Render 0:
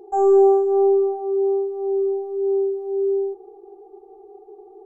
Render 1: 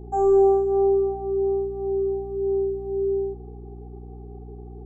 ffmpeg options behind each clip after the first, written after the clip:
-af "aeval=exprs='val(0)+0.0178*(sin(2*PI*60*n/s)+sin(2*PI*2*60*n/s)/2+sin(2*PI*3*60*n/s)/3+sin(2*PI*4*60*n/s)/4+sin(2*PI*5*60*n/s)/5)':c=same,volume=-3dB"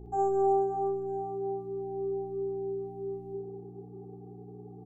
-af "aecho=1:1:60|156|309.6|555.4|948.6:0.631|0.398|0.251|0.158|0.1,volume=-7dB"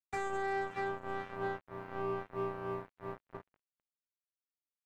-af "highshelf=f=5.8k:g=6.5,alimiter=level_in=4dB:limit=-24dB:level=0:latency=1:release=304,volume=-4dB,acrusher=bits=4:mix=0:aa=0.5"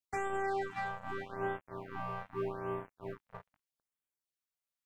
-af "afftfilt=real='re*(1-between(b*sr/1024,280*pow(5200/280,0.5+0.5*sin(2*PI*0.81*pts/sr))/1.41,280*pow(5200/280,0.5+0.5*sin(2*PI*0.81*pts/sr))*1.41))':imag='im*(1-between(b*sr/1024,280*pow(5200/280,0.5+0.5*sin(2*PI*0.81*pts/sr))/1.41,280*pow(5200/280,0.5+0.5*sin(2*PI*0.81*pts/sr))*1.41))':win_size=1024:overlap=0.75,volume=1dB"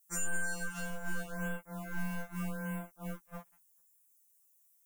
-af "aexciter=amount=8:drive=6:freq=6.2k,afftfilt=real='re*2.83*eq(mod(b,8),0)':imag='im*2.83*eq(mod(b,8),0)':win_size=2048:overlap=0.75,volume=6.5dB"

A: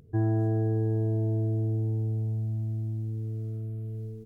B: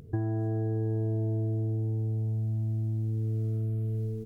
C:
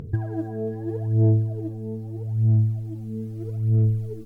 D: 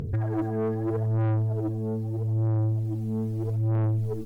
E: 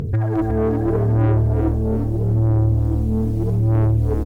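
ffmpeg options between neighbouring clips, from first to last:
-af "acompressor=threshold=-34dB:ratio=6,volume=6.5dB"
-af "aphaser=in_gain=1:out_gain=1:delay=4.5:decay=0.77:speed=0.79:type=sinusoidal"
-af "asoftclip=type=tanh:threshold=-27.5dB,volume=5dB"
-filter_complex "[0:a]asplit=6[a][b][c][d][e][f];[b]adelay=356,afreqshift=-39,volume=-6dB[g];[c]adelay=712,afreqshift=-78,volume=-13.1dB[h];[d]adelay=1068,afreqshift=-117,volume=-20.3dB[i];[e]adelay=1424,afreqshift=-156,volume=-27.4dB[j];[f]adelay=1780,afreqshift=-195,volume=-34.5dB[k];[a][g][h][i][j][k]amix=inputs=6:normalize=0,volume=7.5dB"

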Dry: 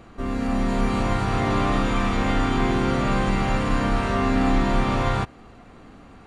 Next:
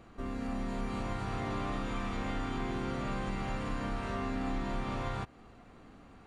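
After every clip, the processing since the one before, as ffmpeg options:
-af "acompressor=threshold=-27dB:ratio=2,volume=-8.5dB"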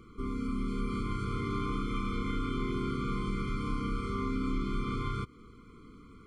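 -af "afftfilt=real='re*eq(mod(floor(b*sr/1024/500),2),0)':imag='im*eq(mod(floor(b*sr/1024/500),2),0)':win_size=1024:overlap=0.75,volume=3dB"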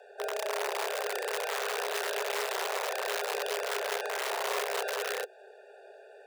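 -af "aeval=exprs='(mod(22.4*val(0)+1,2)-1)/22.4':c=same,afreqshift=380"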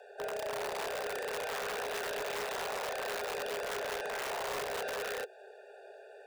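-af "asoftclip=type=tanh:threshold=-32dB"

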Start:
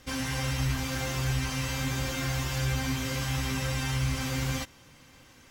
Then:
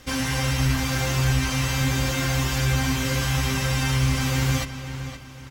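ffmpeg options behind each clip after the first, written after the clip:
-filter_complex "[0:a]asplit=2[a][b];[b]adelay=519,lowpass=f=4.9k:p=1,volume=-10.5dB,asplit=2[c][d];[d]adelay=519,lowpass=f=4.9k:p=1,volume=0.37,asplit=2[e][f];[f]adelay=519,lowpass=f=4.9k:p=1,volume=0.37,asplit=2[g][h];[h]adelay=519,lowpass=f=4.9k:p=1,volume=0.37[i];[a][c][e][g][i]amix=inputs=5:normalize=0,volume=6.5dB"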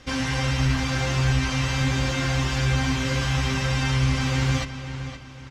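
-af "lowpass=5.8k"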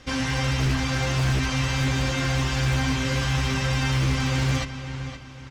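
-af "aeval=exprs='0.15*(abs(mod(val(0)/0.15+3,4)-2)-1)':c=same"

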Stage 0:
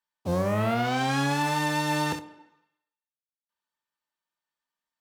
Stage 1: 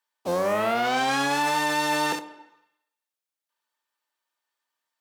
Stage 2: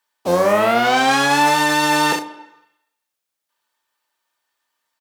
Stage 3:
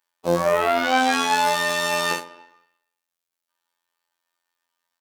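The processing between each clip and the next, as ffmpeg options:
-filter_complex "[0:a]highpass=350,asplit=2[a][b];[b]alimiter=limit=-24dB:level=0:latency=1:release=25,volume=0dB[c];[a][c]amix=inputs=2:normalize=0"
-filter_complex "[0:a]asplit=2[a][b];[b]adelay=34,volume=-9.5dB[c];[a][c]amix=inputs=2:normalize=0,volume=8dB"
-af "afftfilt=real='hypot(re,im)*cos(PI*b)':imag='0':win_size=2048:overlap=0.75,volume=-1dB"

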